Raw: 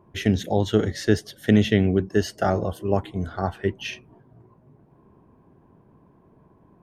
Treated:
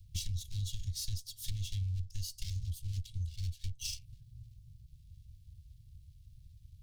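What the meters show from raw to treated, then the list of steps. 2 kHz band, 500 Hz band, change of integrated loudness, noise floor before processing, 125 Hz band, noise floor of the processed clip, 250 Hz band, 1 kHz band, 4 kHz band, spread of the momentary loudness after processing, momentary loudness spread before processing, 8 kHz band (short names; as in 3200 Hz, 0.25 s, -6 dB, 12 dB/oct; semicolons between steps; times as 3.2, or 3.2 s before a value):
-27.0 dB, under -40 dB, -16.0 dB, -58 dBFS, -10.5 dB, -60 dBFS, -37.5 dB, under -40 dB, -9.0 dB, 19 LU, 9 LU, -2.5 dB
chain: minimum comb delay 1.8 ms; inverse Chebyshev band-stop 330–1200 Hz, stop band 70 dB; compressor 5:1, threshold -45 dBFS, peak gain reduction 19 dB; gain +10 dB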